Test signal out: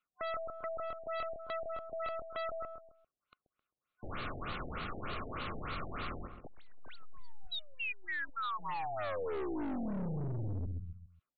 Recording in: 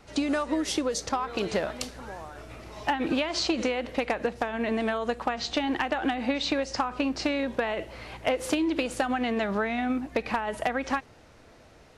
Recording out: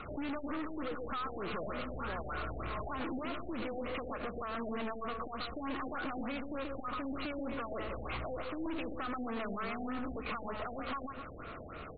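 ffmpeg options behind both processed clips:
ffmpeg -i in.wav -filter_complex "[0:a]asplit=2[link_01][link_02];[link_02]alimiter=level_in=2dB:limit=-24dB:level=0:latency=1:release=379,volume=-2dB,volume=2dB[link_03];[link_01][link_03]amix=inputs=2:normalize=0,equalizer=frequency=7800:width=1.9:gain=12,aeval=exprs='0.473*(cos(1*acos(clip(val(0)/0.473,-1,1)))-cos(1*PI/2))+0.119*(cos(4*acos(clip(val(0)/0.473,-1,1)))-cos(4*PI/2))':channel_layout=same,superequalizer=9b=0.708:10b=3.16:12b=1.58:14b=0.398,acompressor=threshold=-25dB:ratio=5,asplit=2[link_04][link_05];[link_05]adelay=132,lowpass=frequency=1300:poles=1,volume=-7.5dB,asplit=2[link_06][link_07];[link_07]adelay=132,lowpass=frequency=1300:poles=1,volume=0.36,asplit=2[link_08][link_09];[link_09]adelay=132,lowpass=frequency=1300:poles=1,volume=0.36,asplit=2[link_10][link_11];[link_11]adelay=132,lowpass=frequency=1300:poles=1,volume=0.36[link_12];[link_06][link_08][link_10][link_12]amix=inputs=4:normalize=0[link_13];[link_04][link_13]amix=inputs=2:normalize=0,acontrast=82,aeval=exprs='(tanh(28.2*val(0)+0.3)-tanh(0.3))/28.2':channel_layout=same,afftfilt=real='re*lt(b*sr/1024,800*pow(4700/800,0.5+0.5*sin(2*PI*3.3*pts/sr)))':imag='im*lt(b*sr/1024,800*pow(4700/800,0.5+0.5*sin(2*PI*3.3*pts/sr)))':win_size=1024:overlap=0.75,volume=-6.5dB" out.wav

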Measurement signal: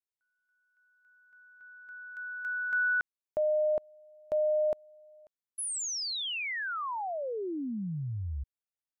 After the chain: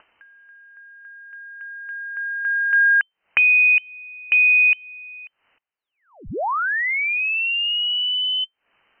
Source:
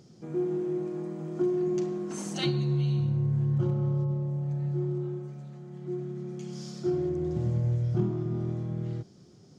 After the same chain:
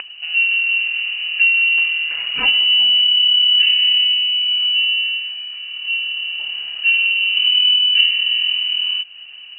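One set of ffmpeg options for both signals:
ffmpeg -i in.wav -filter_complex "[0:a]asplit=2[link_01][link_02];[link_02]acompressor=mode=upward:threshold=-41dB:ratio=2.5:attack=90:release=141:knee=2.83:detection=peak,volume=-1dB[link_03];[link_01][link_03]amix=inputs=2:normalize=0,aeval=exprs='(mod(3.35*val(0)+1,2)-1)/3.35':channel_layout=same,lowpass=frequency=2600:width_type=q:width=0.5098,lowpass=frequency=2600:width_type=q:width=0.6013,lowpass=frequency=2600:width_type=q:width=0.9,lowpass=frequency=2600:width_type=q:width=2.563,afreqshift=-3100,volume=7dB" out.wav

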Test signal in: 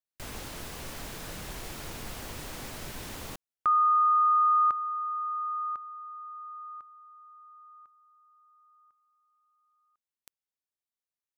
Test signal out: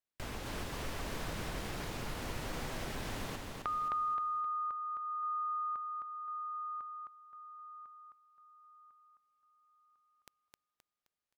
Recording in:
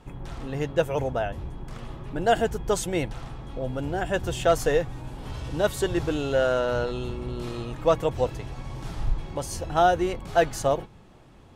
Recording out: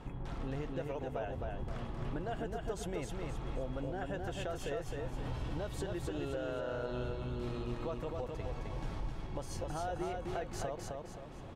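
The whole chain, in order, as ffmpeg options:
ffmpeg -i in.wav -af "aemphasis=mode=reproduction:type=cd,alimiter=limit=-20dB:level=0:latency=1:release=122,acompressor=threshold=-36dB:ratio=10:attack=3.1:release=873:detection=peak,aecho=1:1:262|524|786|1048|1310:0.668|0.261|0.102|0.0396|0.0155,volume=2dB" out.wav

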